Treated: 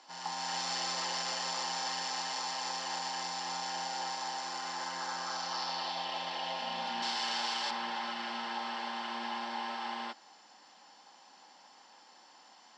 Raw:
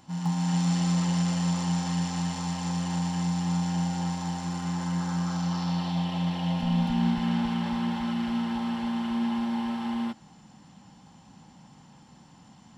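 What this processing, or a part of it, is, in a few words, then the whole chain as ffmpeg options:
phone speaker on a table: -filter_complex "[0:a]asettb=1/sr,asplit=3[link_01][link_02][link_03];[link_01]atrim=end=7.024[link_04];[link_02]atrim=start=7.02:end=7.71,asetpts=PTS-STARTPTS,afade=type=in:duration=0.004:curve=qsin,afade=type=out:start_time=0.686:duration=0.004:curve=qsin,bass=frequency=250:gain=-9,treble=frequency=4000:gain=14[link_05];[link_03]atrim=start=7.706[link_06];[link_04][link_05]acrossfade=duration=0.004:curve1=hsin:curve2=qsin[link_07];[link_07][link_06]acrossfade=duration=0.004:curve1=qsin:curve2=hsin,highpass=frequency=420:width=0.5412,highpass=frequency=420:width=1.3066,equalizer=frequency=470:width_type=q:width=4:gain=-3,equalizer=frequency=1700:width_type=q:width=4:gain=3,equalizer=frequency=4800:width_type=q:width=4:gain=8,lowpass=frequency=7000:width=0.5412,lowpass=frequency=7000:width=1.3066"

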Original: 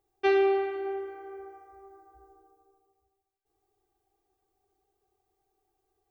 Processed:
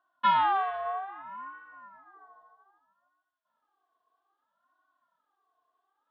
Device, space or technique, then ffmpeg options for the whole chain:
voice changer toy: -af "aeval=exprs='val(0)*sin(2*PI*500*n/s+500*0.4/0.62*sin(2*PI*0.62*n/s))':channel_layout=same,highpass=480,equalizer=frequency=500:width_type=q:width=4:gain=-8,equalizer=frequency=710:width_type=q:width=4:gain=6,equalizer=frequency=1100:width_type=q:width=4:gain=10,equalizer=frequency=1600:width_type=q:width=4:gain=9,equalizer=frequency=2300:width_type=q:width=4:gain=-6,equalizer=frequency=3400:width_type=q:width=4:gain=7,lowpass=frequency=4000:width=0.5412,lowpass=frequency=4000:width=1.3066"

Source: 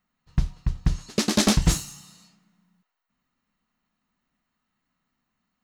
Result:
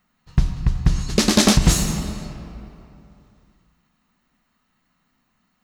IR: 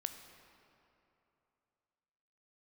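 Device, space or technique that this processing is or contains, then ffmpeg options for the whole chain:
ducked reverb: -filter_complex "[0:a]asplit=3[link_01][link_02][link_03];[1:a]atrim=start_sample=2205[link_04];[link_02][link_04]afir=irnorm=-1:irlink=0[link_05];[link_03]apad=whole_len=248318[link_06];[link_05][link_06]sidechaincompress=threshold=-22dB:ratio=8:attack=5:release=126,volume=8dB[link_07];[link_01][link_07]amix=inputs=2:normalize=0"

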